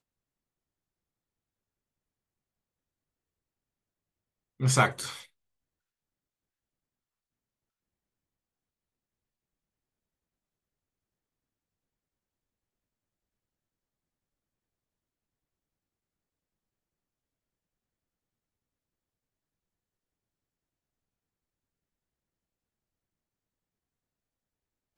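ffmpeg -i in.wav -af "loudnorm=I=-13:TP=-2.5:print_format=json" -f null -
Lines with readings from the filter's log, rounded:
"input_i" : "-26.0",
"input_tp" : "-7.3",
"input_lra" : "15.1",
"input_thresh" : "-38.1",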